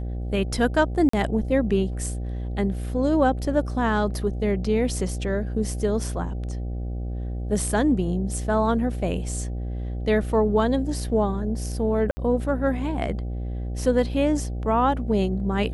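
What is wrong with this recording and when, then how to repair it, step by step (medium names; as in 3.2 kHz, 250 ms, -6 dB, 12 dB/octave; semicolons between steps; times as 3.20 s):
buzz 60 Hz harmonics 13 -29 dBFS
1.09–1.13 s: dropout 44 ms
12.11–12.17 s: dropout 60 ms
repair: de-hum 60 Hz, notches 13; interpolate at 1.09 s, 44 ms; interpolate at 12.11 s, 60 ms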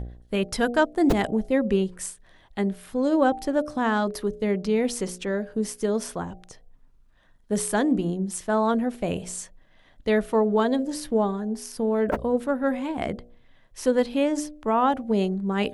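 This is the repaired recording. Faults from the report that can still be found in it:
nothing left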